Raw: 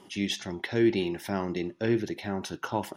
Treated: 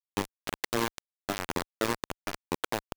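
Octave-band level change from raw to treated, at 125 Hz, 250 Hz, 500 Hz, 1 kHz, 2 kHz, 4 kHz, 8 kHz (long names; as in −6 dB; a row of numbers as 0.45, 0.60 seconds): −7.5, −8.5, −5.0, +1.5, 0.0, −1.5, +3.5 decibels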